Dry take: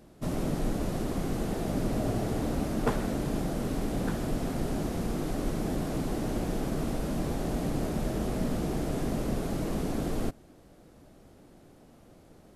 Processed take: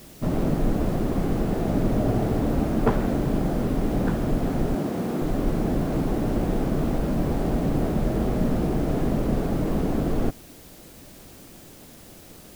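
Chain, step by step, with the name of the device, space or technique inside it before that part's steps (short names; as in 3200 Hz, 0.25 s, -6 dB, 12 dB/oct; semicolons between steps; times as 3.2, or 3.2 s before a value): 4.75–5.22 HPF 160 Hz 12 dB/oct; cassette deck with a dirty head (tape spacing loss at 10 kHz 22 dB; wow and flutter; white noise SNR 26 dB); gain +7.5 dB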